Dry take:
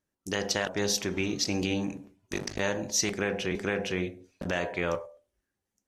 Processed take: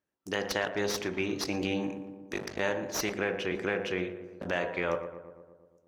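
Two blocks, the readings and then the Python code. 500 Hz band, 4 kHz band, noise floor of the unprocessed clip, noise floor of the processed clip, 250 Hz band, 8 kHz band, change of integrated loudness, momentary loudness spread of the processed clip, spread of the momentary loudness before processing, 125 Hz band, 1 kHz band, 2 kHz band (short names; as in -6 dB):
0.0 dB, -5.0 dB, under -85 dBFS, -67 dBFS, -2.5 dB, -8.5 dB, -2.0 dB, 8 LU, 10 LU, -5.0 dB, +0.5 dB, -0.5 dB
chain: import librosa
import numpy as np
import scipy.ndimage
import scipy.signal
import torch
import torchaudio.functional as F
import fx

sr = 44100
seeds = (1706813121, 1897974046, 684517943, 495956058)

p1 = fx.tracing_dist(x, sr, depth_ms=0.04)
p2 = scipy.signal.sosfilt(scipy.signal.butter(2, 42.0, 'highpass', fs=sr, output='sos'), p1)
p3 = fx.bass_treble(p2, sr, bass_db=-7, treble_db=-9)
y = p3 + fx.echo_filtered(p3, sr, ms=117, feedback_pct=67, hz=1600.0, wet_db=-11.0, dry=0)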